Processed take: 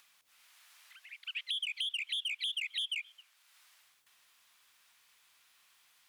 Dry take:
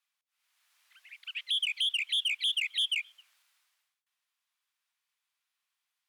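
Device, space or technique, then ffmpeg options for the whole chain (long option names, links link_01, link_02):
upward and downward compression: -af "acompressor=mode=upward:threshold=-51dB:ratio=2.5,acompressor=threshold=-34dB:ratio=5"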